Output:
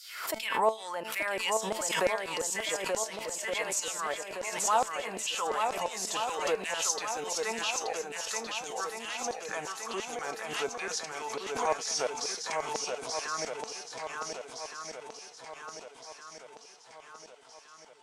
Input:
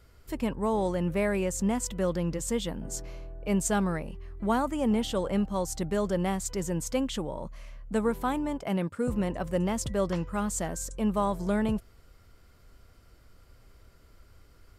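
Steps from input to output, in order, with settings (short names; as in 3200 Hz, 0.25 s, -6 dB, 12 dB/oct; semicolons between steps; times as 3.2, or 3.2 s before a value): speed glide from 101% -> 63%; in parallel at -0.5 dB: vocal rider within 3 dB 0.5 s; on the sum: LFO high-pass saw down 2.9 Hz 540–5400 Hz; resonator 220 Hz, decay 0.25 s, harmonics all, mix 60%; swung echo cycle 1.466 s, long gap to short 1.5:1, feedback 49%, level -4.5 dB; backwards sustainer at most 62 dB/s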